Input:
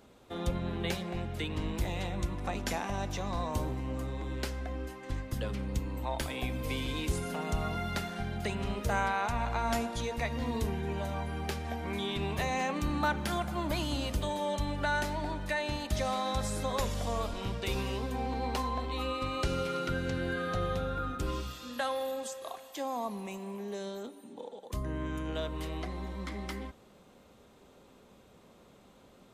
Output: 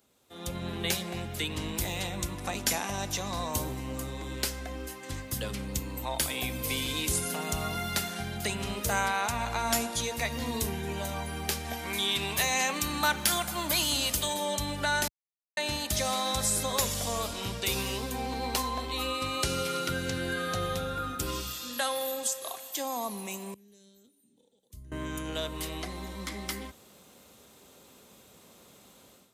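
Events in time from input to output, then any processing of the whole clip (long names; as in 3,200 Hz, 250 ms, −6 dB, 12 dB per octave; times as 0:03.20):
0:11.73–0:14.34: tilt shelving filter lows −3.5 dB, about 780 Hz
0:15.08–0:15.57: silence
0:23.54–0:24.92: guitar amp tone stack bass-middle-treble 10-0-1
whole clip: high-pass filter 64 Hz; first-order pre-emphasis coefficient 0.8; automatic gain control gain up to 14 dB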